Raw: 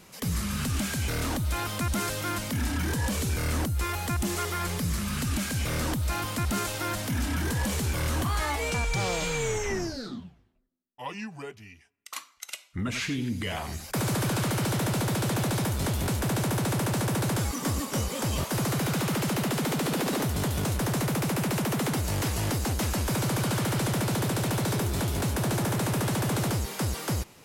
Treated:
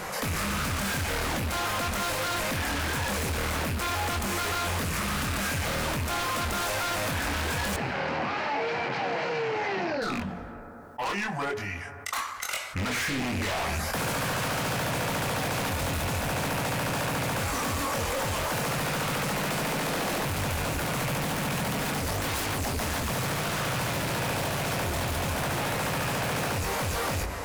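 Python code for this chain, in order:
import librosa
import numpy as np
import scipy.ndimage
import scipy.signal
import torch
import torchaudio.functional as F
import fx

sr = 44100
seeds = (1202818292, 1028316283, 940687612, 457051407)

y = fx.rattle_buzz(x, sr, strikes_db=-37.0, level_db=-26.0)
y = fx.band_shelf(y, sr, hz=970.0, db=9.5, octaves=2.4)
y = fx.hum_notches(y, sr, base_hz=60, count=7)
y = 10.0 ** (-31.0 / 20.0) * np.tanh(y / 10.0 ** (-31.0 / 20.0))
y = fx.chorus_voices(y, sr, voices=6, hz=0.93, base_ms=23, depth_ms=3.0, mix_pct=40)
y = 10.0 ** (-34.5 / 20.0) * (np.abs((y / 10.0 ** (-34.5 / 20.0) + 3.0) % 4.0 - 2.0) - 1.0)
y = fx.cabinet(y, sr, low_hz=130.0, low_slope=24, high_hz=4100.0, hz=(780.0, 1200.0, 3500.0), db=(5, -4, -10), at=(7.76, 10.02))
y = fx.rev_fdn(y, sr, rt60_s=2.2, lf_ratio=0.85, hf_ratio=0.35, size_ms=63.0, drr_db=15.0)
y = fx.env_flatten(y, sr, amount_pct=50)
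y = y * librosa.db_to_amplitude(8.5)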